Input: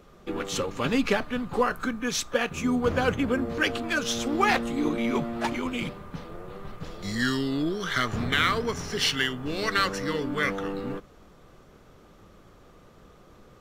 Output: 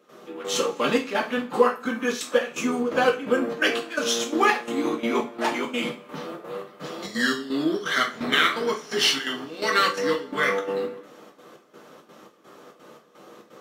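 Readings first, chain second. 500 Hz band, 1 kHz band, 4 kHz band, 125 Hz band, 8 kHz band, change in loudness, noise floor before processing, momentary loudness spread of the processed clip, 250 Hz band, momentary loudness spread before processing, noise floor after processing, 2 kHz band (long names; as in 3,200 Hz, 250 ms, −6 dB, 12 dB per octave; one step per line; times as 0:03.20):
+4.5 dB, +3.5 dB, +4.0 dB, −9.0 dB, +3.0 dB, +3.0 dB, −54 dBFS, 14 LU, 0.0 dB, 12 LU, −55 dBFS, +3.0 dB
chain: high-pass filter 220 Hz 24 dB per octave
in parallel at −2.5 dB: downward compressor, threshold −38 dBFS, peak gain reduction 19 dB
on the sum: gate pattern ".xx..xxx" 170 BPM −12 dB
coupled-rooms reverb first 0.29 s, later 1.6 s, from −26 dB, DRR −1 dB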